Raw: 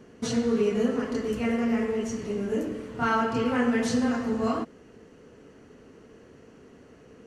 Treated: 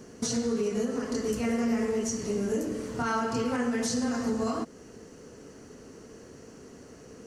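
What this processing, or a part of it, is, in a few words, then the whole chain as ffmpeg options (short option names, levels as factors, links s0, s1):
over-bright horn tweeter: -af "highshelf=f=4100:t=q:w=1.5:g=8,alimiter=limit=0.0708:level=0:latency=1:release=307,volume=1.41"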